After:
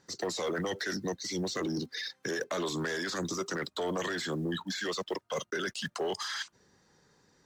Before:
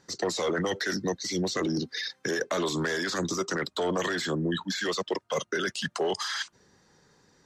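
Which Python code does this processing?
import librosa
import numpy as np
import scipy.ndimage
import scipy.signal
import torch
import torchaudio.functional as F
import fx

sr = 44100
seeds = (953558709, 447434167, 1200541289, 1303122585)

y = fx.block_float(x, sr, bits=7)
y = fx.cheby_harmonics(y, sr, harmonics=(5,), levels_db=(-27,), full_scale_db=-16.5)
y = F.gain(torch.from_numpy(y), -5.5).numpy()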